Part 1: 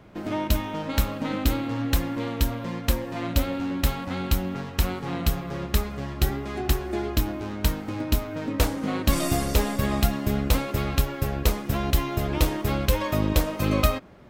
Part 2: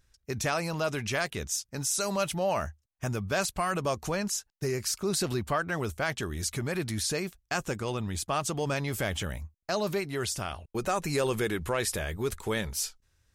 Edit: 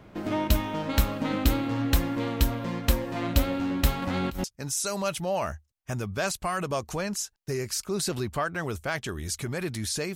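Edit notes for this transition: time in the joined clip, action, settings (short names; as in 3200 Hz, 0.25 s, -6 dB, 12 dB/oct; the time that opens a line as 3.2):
part 1
4.02–4.44 negative-ratio compressor -30 dBFS, ratio -1
4.44 switch to part 2 from 1.58 s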